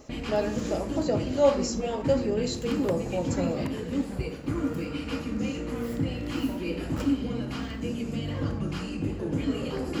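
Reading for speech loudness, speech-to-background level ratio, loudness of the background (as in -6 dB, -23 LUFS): -29.0 LUFS, 2.5 dB, -31.5 LUFS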